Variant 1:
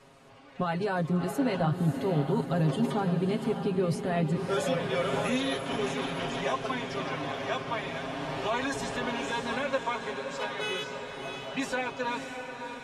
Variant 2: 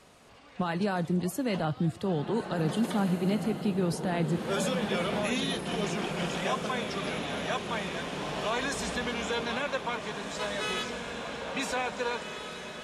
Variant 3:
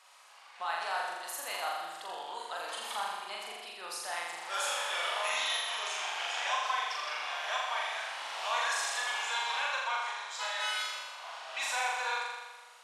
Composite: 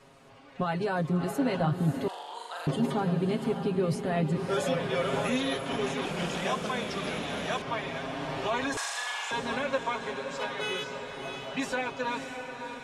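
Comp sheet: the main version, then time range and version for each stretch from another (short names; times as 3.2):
1
2.08–2.67 from 3
6.05–7.62 from 2
8.77–9.31 from 3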